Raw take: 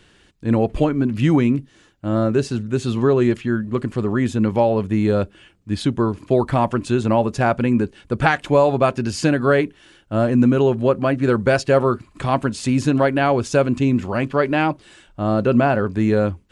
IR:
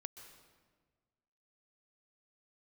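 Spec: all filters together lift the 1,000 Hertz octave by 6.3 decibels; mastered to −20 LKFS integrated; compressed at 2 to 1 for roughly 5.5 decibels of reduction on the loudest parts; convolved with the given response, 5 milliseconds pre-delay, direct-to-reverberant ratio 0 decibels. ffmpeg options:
-filter_complex "[0:a]equalizer=frequency=1000:width_type=o:gain=8.5,acompressor=threshold=-17dB:ratio=2,asplit=2[link_01][link_02];[1:a]atrim=start_sample=2205,adelay=5[link_03];[link_02][link_03]afir=irnorm=-1:irlink=0,volume=4.5dB[link_04];[link_01][link_04]amix=inputs=2:normalize=0,volume=-2.5dB"

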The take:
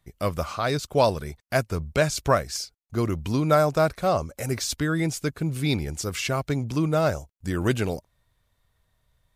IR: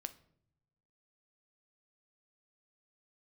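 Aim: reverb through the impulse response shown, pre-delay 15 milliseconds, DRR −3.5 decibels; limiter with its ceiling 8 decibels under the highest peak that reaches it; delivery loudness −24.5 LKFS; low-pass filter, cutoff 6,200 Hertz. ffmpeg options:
-filter_complex "[0:a]lowpass=6200,alimiter=limit=-15dB:level=0:latency=1,asplit=2[link_01][link_02];[1:a]atrim=start_sample=2205,adelay=15[link_03];[link_02][link_03]afir=irnorm=-1:irlink=0,volume=6.5dB[link_04];[link_01][link_04]amix=inputs=2:normalize=0,volume=-1.5dB"

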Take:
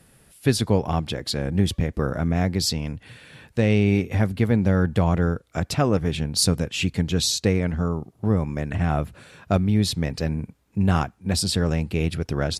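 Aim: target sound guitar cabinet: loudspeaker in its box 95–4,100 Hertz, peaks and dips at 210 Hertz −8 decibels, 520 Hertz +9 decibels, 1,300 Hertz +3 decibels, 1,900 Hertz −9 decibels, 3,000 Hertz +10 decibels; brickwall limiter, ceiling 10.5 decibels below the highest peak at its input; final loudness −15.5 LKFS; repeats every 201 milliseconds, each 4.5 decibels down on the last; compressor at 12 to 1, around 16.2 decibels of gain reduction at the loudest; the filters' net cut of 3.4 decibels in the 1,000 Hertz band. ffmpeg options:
ffmpeg -i in.wav -af "equalizer=frequency=1000:width_type=o:gain=-7,acompressor=threshold=-32dB:ratio=12,alimiter=level_in=6.5dB:limit=-24dB:level=0:latency=1,volume=-6.5dB,highpass=95,equalizer=frequency=210:width_type=q:width=4:gain=-8,equalizer=frequency=520:width_type=q:width=4:gain=9,equalizer=frequency=1300:width_type=q:width=4:gain=3,equalizer=frequency=1900:width_type=q:width=4:gain=-9,equalizer=frequency=3000:width_type=q:width=4:gain=10,lowpass=frequency=4100:width=0.5412,lowpass=frequency=4100:width=1.3066,aecho=1:1:201|402|603|804|1005|1206|1407|1608|1809:0.596|0.357|0.214|0.129|0.0772|0.0463|0.0278|0.0167|0.01,volume=24dB" out.wav

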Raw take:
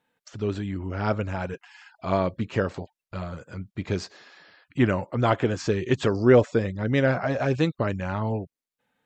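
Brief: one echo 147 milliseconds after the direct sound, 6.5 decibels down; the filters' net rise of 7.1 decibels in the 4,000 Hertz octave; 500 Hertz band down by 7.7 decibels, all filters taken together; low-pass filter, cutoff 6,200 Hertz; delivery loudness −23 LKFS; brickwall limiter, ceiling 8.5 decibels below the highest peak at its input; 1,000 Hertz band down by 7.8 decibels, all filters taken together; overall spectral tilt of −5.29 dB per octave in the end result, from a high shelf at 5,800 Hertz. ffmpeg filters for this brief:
ffmpeg -i in.wav -af "lowpass=6200,equalizer=frequency=500:width_type=o:gain=-8,equalizer=frequency=1000:width_type=o:gain=-9,equalizer=frequency=4000:width_type=o:gain=8.5,highshelf=frequency=5800:gain=5.5,alimiter=limit=-17.5dB:level=0:latency=1,aecho=1:1:147:0.473,volume=7dB" out.wav

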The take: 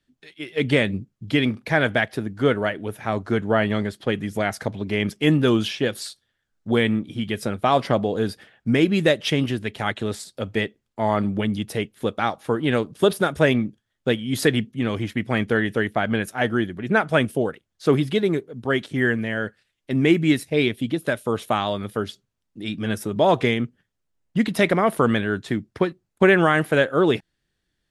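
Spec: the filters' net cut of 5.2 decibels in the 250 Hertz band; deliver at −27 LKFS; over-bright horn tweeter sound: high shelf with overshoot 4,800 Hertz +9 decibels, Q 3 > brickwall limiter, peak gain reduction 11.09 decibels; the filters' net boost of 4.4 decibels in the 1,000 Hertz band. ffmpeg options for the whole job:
ffmpeg -i in.wav -af "equalizer=frequency=250:width_type=o:gain=-7.5,equalizer=frequency=1000:width_type=o:gain=7,highshelf=frequency=4800:width_type=q:width=3:gain=9,alimiter=limit=-14dB:level=0:latency=1" out.wav

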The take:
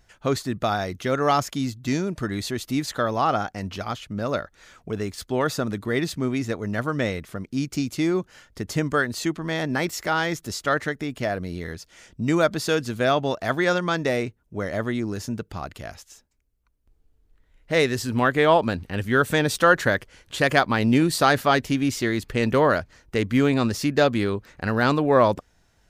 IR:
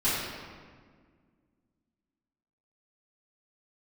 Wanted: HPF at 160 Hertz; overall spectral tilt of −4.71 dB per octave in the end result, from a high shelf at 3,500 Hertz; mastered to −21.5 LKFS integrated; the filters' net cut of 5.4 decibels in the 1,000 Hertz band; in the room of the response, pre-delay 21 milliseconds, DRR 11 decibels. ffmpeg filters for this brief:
-filter_complex "[0:a]highpass=160,equalizer=frequency=1000:width_type=o:gain=-7,highshelf=frequency=3500:gain=-7.5,asplit=2[link_01][link_02];[1:a]atrim=start_sample=2205,adelay=21[link_03];[link_02][link_03]afir=irnorm=-1:irlink=0,volume=-23dB[link_04];[link_01][link_04]amix=inputs=2:normalize=0,volume=4.5dB"

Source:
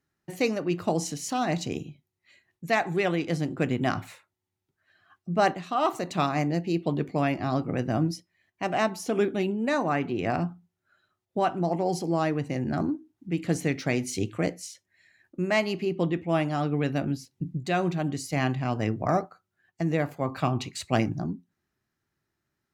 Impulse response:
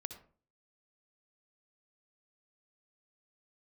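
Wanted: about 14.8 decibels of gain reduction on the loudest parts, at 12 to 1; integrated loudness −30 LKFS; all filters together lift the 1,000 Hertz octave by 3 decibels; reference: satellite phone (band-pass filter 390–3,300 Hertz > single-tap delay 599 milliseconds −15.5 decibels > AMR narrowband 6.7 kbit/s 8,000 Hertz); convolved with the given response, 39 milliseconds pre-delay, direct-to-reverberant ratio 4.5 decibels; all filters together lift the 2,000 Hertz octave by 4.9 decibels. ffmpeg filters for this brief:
-filter_complex "[0:a]equalizer=frequency=1000:width_type=o:gain=3.5,equalizer=frequency=2000:width_type=o:gain=5.5,acompressor=threshold=-31dB:ratio=12,asplit=2[link_01][link_02];[1:a]atrim=start_sample=2205,adelay=39[link_03];[link_02][link_03]afir=irnorm=-1:irlink=0,volume=-1.5dB[link_04];[link_01][link_04]amix=inputs=2:normalize=0,highpass=390,lowpass=3300,aecho=1:1:599:0.168,volume=9.5dB" -ar 8000 -c:a libopencore_amrnb -b:a 6700

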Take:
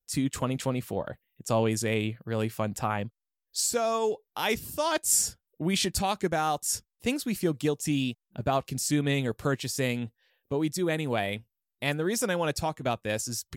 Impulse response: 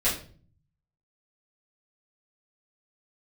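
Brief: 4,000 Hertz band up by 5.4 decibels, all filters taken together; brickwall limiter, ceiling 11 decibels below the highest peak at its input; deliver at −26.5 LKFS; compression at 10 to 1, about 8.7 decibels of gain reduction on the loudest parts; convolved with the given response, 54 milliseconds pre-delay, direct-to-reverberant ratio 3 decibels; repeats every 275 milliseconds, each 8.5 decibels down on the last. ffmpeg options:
-filter_complex "[0:a]equalizer=frequency=4000:width_type=o:gain=7,acompressor=threshold=-29dB:ratio=10,alimiter=level_in=4dB:limit=-24dB:level=0:latency=1,volume=-4dB,aecho=1:1:275|550|825|1100:0.376|0.143|0.0543|0.0206,asplit=2[link_01][link_02];[1:a]atrim=start_sample=2205,adelay=54[link_03];[link_02][link_03]afir=irnorm=-1:irlink=0,volume=-14dB[link_04];[link_01][link_04]amix=inputs=2:normalize=0,volume=9dB"

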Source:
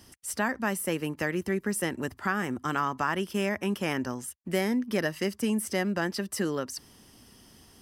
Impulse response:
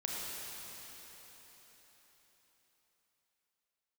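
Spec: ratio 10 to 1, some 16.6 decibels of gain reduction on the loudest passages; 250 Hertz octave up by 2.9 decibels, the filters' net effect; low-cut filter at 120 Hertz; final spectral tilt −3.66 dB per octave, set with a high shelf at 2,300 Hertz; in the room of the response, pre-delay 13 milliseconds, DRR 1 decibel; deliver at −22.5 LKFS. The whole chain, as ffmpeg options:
-filter_complex "[0:a]highpass=120,equalizer=frequency=250:width_type=o:gain=4,highshelf=frequency=2300:gain=8.5,acompressor=threshold=-38dB:ratio=10,asplit=2[link_01][link_02];[1:a]atrim=start_sample=2205,adelay=13[link_03];[link_02][link_03]afir=irnorm=-1:irlink=0,volume=-4.5dB[link_04];[link_01][link_04]amix=inputs=2:normalize=0,volume=17dB"

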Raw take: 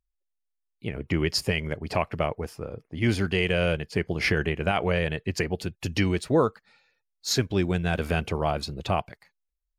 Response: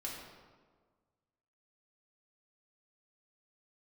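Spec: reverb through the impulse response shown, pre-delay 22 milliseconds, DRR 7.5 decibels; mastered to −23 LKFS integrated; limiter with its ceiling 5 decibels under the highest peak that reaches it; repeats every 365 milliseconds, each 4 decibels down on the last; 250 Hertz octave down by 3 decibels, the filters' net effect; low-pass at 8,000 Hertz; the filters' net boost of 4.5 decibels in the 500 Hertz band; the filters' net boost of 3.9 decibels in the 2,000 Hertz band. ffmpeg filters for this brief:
-filter_complex "[0:a]lowpass=8000,equalizer=frequency=250:width_type=o:gain=-8,equalizer=frequency=500:width_type=o:gain=7.5,equalizer=frequency=2000:width_type=o:gain=4.5,alimiter=limit=-12dB:level=0:latency=1,aecho=1:1:365|730|1095|1460|1825|2190|2555|2920|3285:0.631|0.398|0.25|0.158|0.0994|0.0626|0.0394|0.0249|0.0157,asplit=2[link_01][link_02];[1:a]atrim=start_sample=2205,adelay=22[link_03];[link_02][link_03]afir=irnorm=-1:irlink=0,volume=-7.5dB[link_04];[link_01][link_04]amix=inputs=2:normalize=0,volume=1dB"

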